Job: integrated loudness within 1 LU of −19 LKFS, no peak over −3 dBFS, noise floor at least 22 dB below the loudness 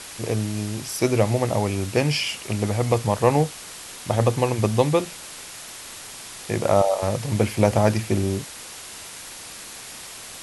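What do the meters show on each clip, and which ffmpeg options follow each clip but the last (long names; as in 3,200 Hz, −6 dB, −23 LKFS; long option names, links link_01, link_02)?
background noise floor −39 dBFS; target noise floor −45 dBFS; integrated loudness −22.5 LKFS; sample peak −2.5 dBFS; target loudness −19.0 LKFS
→ -af "afftdn=noise_reduction=6:noise_floor=-39"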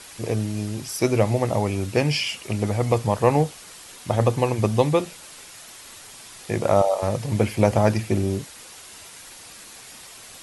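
background noise floor −44 dBFS; target noise floor −45 dBFS
→ -af "afftdn=noise_reduction=6:noise_floor=-44"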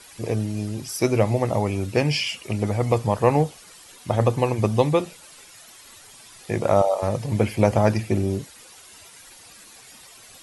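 background noise floor −47 dBFS; integrated loudness −23.0 LKFS; sample peak −2.5 dBFS; target loudness −19.0 LKFS
→ -af "volume=4dB,alimiter=limit=-3dB:level=0:latency=1"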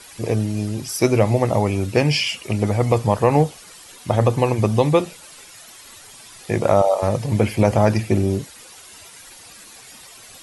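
integrated loudness −19.5 LKFS; sample peak −3.0 dBFS; background noise floor −43 dBFS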